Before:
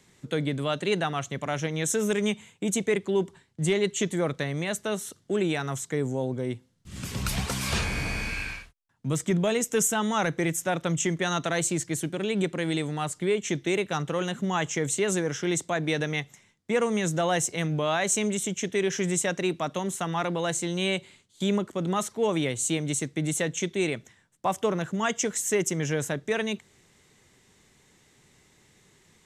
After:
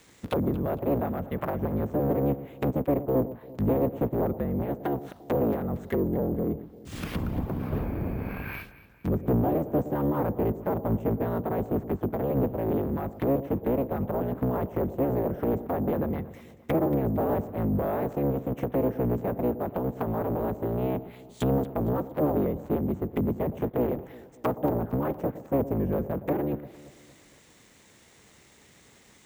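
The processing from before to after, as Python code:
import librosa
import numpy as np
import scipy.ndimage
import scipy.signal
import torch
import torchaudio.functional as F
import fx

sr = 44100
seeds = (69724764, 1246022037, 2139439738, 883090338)

y = fx.cycle_switch(x, sr, every=3, mode='inverted')
y = fx.env_lowpass_down(y, sr, base_hz=560.0, full_db=-26.0)
y = fx.highpass(y, sr, hz=73.0, slope=6)
y = 10.0 ** (-19.0 / 20.0) * np.tanh(y / 10.0 ** (-19.0 / 20.0))
y = fx.echo_alternate(y, sr, ms=115, hz=870.0, feedback_pct=66, wet_db=-13.5)
y = np.repeat(y[::3], 3)[:len(y)]
y = fx.slew_limit(y, sr, full_power_hz=110.0)
y = y * librosa.db_to_amplitude(4.0)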